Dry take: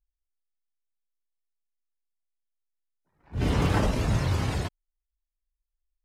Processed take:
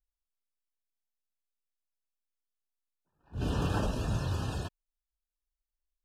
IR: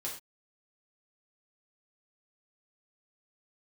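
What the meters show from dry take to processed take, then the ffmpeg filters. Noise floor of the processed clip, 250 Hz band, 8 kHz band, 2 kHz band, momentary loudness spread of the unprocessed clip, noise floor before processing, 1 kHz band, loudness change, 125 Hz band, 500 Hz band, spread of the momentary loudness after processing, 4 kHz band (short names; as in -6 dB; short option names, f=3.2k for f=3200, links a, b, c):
under -85 dBFS, -6.5 dB, -6.5 dB, -8.5 dB, 11 LU, under -85 dBFS, -6.5 dB, -6.5 dB, -6.5 dB, -6.5 dB, 11 LU, -6.5 dB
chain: -af "asuperstop=centerf=2100:order=20:qfactor=3.4,volume=-6.5dB"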